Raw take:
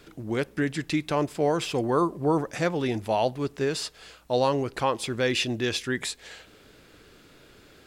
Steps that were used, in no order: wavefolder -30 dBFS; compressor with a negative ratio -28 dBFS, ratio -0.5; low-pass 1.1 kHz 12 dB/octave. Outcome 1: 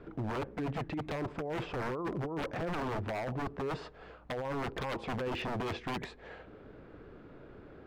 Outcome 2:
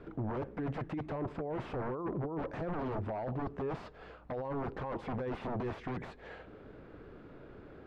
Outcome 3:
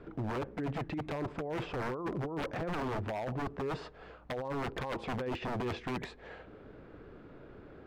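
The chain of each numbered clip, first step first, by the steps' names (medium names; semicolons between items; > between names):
low-pass > compressor with a negative ratio > wavefolder; compressor with a negative ratio > wavefolder > low-pass; compressor with a negative ratio > low-pass > wavefolder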